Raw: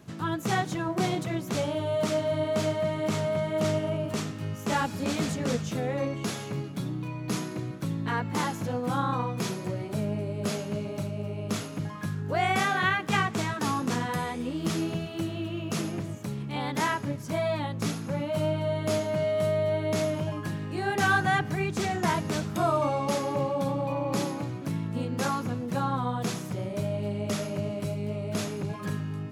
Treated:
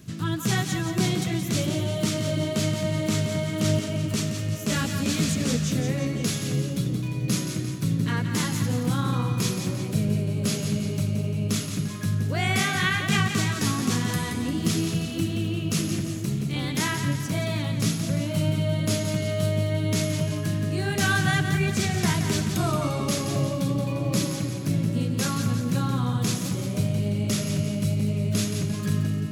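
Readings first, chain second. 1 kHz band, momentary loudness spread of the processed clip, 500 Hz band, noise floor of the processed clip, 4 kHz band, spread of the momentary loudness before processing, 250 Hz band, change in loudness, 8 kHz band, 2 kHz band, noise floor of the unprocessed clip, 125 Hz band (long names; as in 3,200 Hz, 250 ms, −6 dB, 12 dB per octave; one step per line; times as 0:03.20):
−4.0 dB, 4 LU, −2.5 dB, −31 dBFS, +7.0 dB, 7 LU, +5.0 dB, +4.0 dB, +9.0 dB, +2.0 dB, −38 dBFS, +7.5 dB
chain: parametric band 790 Hz −14.5 dB 2.6 octaves
notch filter 860 Hz, Q 12
echo with a time of its own for lows and highs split 650 Hz, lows 696 ms, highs 174 ms, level −7.5 dB
level +9 dB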